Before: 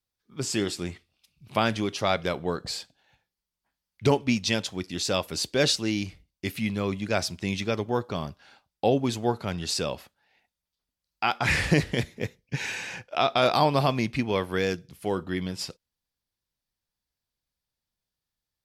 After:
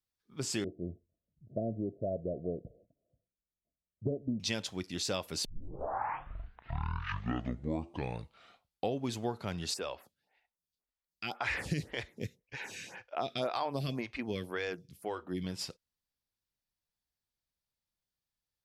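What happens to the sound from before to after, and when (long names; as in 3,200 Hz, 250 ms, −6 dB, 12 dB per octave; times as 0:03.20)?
0:00.64–0:04.40: Chebyshev low-pass filter 690 Hz, order 10
0:05.45: tape start 3.51 s
0:09.74–0:15.44: phaser with staggered stages 1.9 Hz
whole clip: downward compressor, threshold −24 dBFS; level −5.5 dB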